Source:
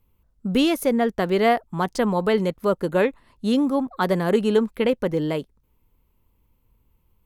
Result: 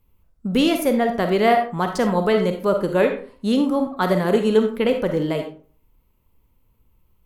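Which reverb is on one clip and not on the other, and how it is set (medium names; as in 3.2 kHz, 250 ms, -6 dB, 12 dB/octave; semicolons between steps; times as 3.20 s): algorithmic reverb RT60 0.43 s, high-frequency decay 0.6×, pre-delay 10 ms, DRR 5 dB; trim +1 dB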